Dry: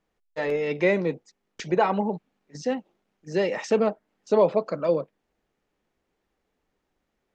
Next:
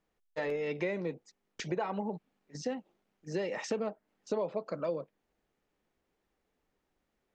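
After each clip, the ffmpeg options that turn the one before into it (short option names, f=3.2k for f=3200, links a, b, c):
-af "acompressor=threshold=-28dB:ratio=4,volume=-3.5dB"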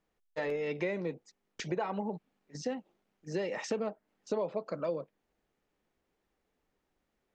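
-af anull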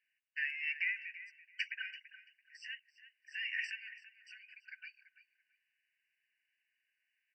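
-filter_complex "[0:a]highshelf=f=4.2k:t=q:w=3:g=-8.5,asplit=2[a][b];[b]adelay=335,lowpass=f=4.3k:p=1,volume=-14dB,asplit=2[c][d];[d]adelay=335,lowpass=f=4.3k:p=1,volume=0.21[e];[a][c][e]amix=inputs=3:normalize=0,afftfilt=real='re*eq(mod(floor(b*sr/1024/1500),2),1)':imag='im*eq(mod(floor(b*sr/1024/1500),2),1)':win_size=1024:overlap=0.75,volume=4dB"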